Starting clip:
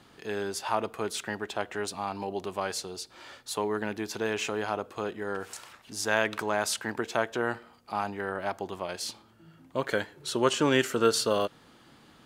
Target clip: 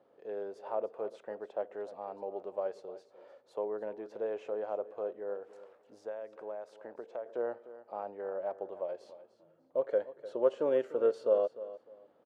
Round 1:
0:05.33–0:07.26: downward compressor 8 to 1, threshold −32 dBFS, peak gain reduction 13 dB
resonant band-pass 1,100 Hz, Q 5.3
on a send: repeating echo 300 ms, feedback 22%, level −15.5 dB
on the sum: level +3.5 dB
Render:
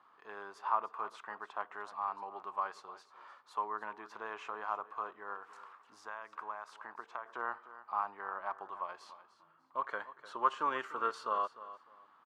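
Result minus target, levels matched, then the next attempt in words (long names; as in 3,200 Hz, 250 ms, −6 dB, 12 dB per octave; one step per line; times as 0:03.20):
1,000 Hz band +12.5 dB
0:05.33–0:07.26: downward compressor 8 to 1, threshold −32 dBFS, peak gain reduction 13 dB
resonant band-pass 540 Hz, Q 5.3
on a send: repeating echo 300 ms, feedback 22%, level −15.5 dB
on the sum: level +3.5 dB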